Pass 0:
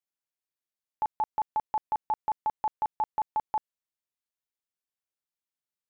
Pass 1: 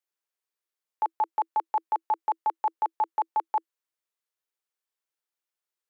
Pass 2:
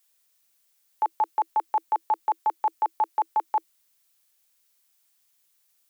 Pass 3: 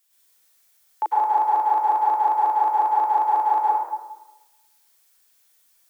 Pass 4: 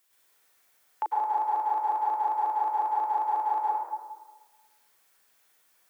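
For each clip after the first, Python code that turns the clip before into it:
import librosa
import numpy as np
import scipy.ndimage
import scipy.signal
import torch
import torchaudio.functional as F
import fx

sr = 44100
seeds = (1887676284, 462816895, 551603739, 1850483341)

y1 = scipy.signal.sosfilt(scipy.signal.cheby1(6, 3, 320.0, 'highpass', fs=sr, output='sos'), x)
y1 = y1 * librosa.db_to_amplitude(4.5)
y2 = fx.dmg_noise_colour(y1, sr, seeds[0], colour='blue', level_db=-70.0)
y2 = y2 * librosa.db_to_amplitude(2.0)
y3 = fx.rev_plate(y2, sr, seeds[1], rt60_s=1.1, hf_ratio=0.55, predelay_ms=90, drr_db=-7.5)
y4 = fx.band_squash(y3, sr, depth_pct=40)
y4 = y4 * librosa.db_to_amplitude(-7.5)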